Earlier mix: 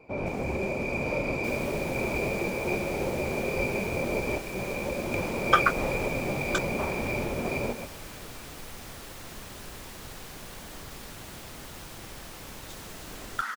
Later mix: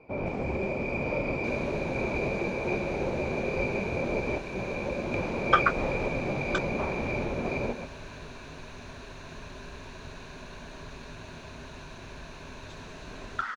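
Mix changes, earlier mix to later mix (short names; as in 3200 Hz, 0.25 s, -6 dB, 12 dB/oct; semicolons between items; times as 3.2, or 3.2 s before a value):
second sound: add ripple EQ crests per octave 1.5, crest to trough 9 dB; master: add air absorption 140 m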